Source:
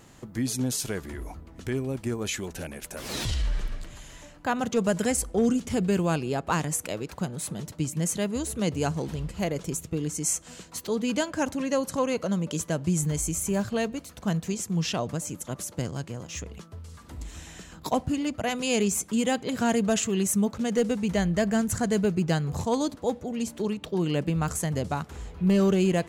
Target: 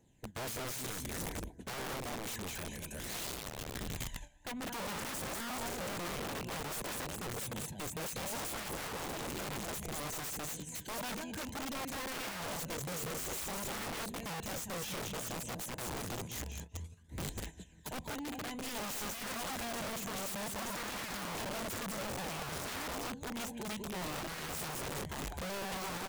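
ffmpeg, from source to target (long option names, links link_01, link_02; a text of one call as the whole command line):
ffmpeg -i in.wav -filter_complex "[0:a]aecho=1:1:199|398|597|796:0.447|0.161|0.0579|0.0208,acrossover=split=240[link_01][link_02];[link_02]acompressor=threshold=-30dB:ratio=8[link_03];[link_01][link_03]amix=inputs=2:normalize=0,asoftclip=type=tanh:threshold=-29.5dB,asettb=1/sr,asplit=3[link_04][link_05][link_06];[link_04]atrim=end=8.804[link_07];[link_05]atrim=start=8.8:end=11.09,asetpts=PTS-STARTPTS,afade=type=in:duration=0.004:curve=qsin,afade=type=out:start_time=2.286:duration=0.004:curve=qsin,lowshelf=frequency=210:gain=2.5[link_08];[link_06]atrim=start=11.086[link_09];[link_07][link_08]acrossfade=duration=0.004:curve1=hsin:curve2=qsin[link_10];[link_10][link_09]acrossfade=duration=0.004:curve1=qsin:curve2=hsin,aeval=exprs='val(0)+0.000501*(sin(2*PI*60*n/s)+sin(2*PI*2*60*n/s)/2+sin(2*PI*3*60*n/s)/3+sin(2*PI*4*60*n/s)/4+sin(2*PI*5*60*n/s)/5)':channel_layout=same,superequalizer=10b=0.251:14b=0.398,agate=range=-14dB:threshold=-41dB:ratio=16:detection=peak,aphaser=in_gain=1:out_gain=1:delay=1.3:decay=0.49:speed=0.57:type=triangular,aeval=exprs='(mod(31.6*val(0)+1,2)-1)/31.6':channel_layout=same,volume=-5.5dB" out.wav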